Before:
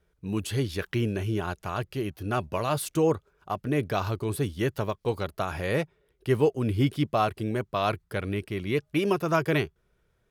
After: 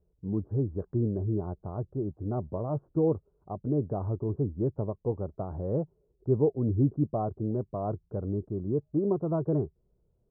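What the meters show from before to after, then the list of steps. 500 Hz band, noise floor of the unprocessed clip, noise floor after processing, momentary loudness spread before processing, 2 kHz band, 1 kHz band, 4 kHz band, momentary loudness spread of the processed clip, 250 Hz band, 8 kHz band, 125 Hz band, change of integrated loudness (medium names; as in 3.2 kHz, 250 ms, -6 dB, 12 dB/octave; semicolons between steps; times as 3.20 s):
-3.0 dB, -71 dBFS, -72 dBFS, 8 LU, under -30 dB, -9.5 dB, under -40 dB, 9 LU, -1.0 dB, under -35 dB, 0.0 dB, -2.5 dB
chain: Gaussian low-pass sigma 12 samples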